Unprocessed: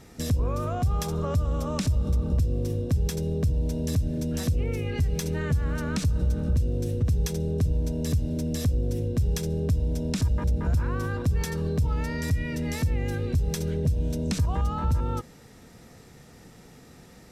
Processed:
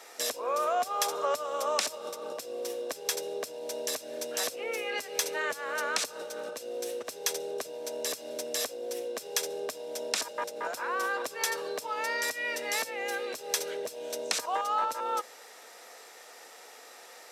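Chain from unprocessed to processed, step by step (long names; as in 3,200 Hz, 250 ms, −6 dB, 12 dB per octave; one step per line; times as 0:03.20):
high-pass filter 530 Hz 24 dB per octave
level +6 dB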